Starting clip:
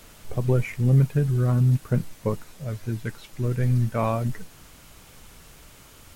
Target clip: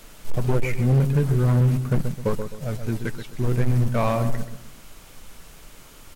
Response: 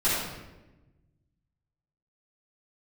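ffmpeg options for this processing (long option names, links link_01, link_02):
-filter_complex "[0:a]asplit=2[link_01][link_02];[link_02]acrusher=bits=4:mix=0:aa=0.5,volume=-8.5dB[link_03];[link_01][link_03]amix=inputs=2:normalize=0,equalizer=frequency=74:width=0.43:gain=-13.5,asoftclip=type=tanh:threshold=-17.5dB,lowshelf=frequency=250:gain=10.5,asplit=2[link_04][link_05];[link_05]adelay=130,lowpass=frequency=1600:poles=1,volume=-8dB,asplit=2[link_06][link_07];[link_07]adelay=130,lowpass=frequency=1600:poles=1,volume=0.35,asplit=2[link_08][link_09];[link_09]adelay=130,lowpass=frequency=1600:poles=1,volume=0.35,asplit=2[link_10][link_11];[link_11]adelay=130,lowpass=frequency=1600:poles=1,volume=0.35[link_12];[link_04][link_06][link_08][link_10][link_12]amix=inputs=5:normalize=0,asoftclip=type=hard:threshold=-16dB,volume=1.5dB"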